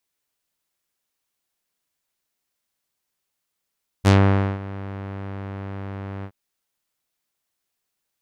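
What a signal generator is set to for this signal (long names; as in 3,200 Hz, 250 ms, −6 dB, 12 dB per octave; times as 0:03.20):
subtractive voice saw G2 12 dB per octave, low-pass 1,900 Hz, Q 0.89, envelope 3 octaves, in 0.15 s, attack 35 ms, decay 0.51 s, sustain −19.5 dB, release 0.07 s, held 2.20 s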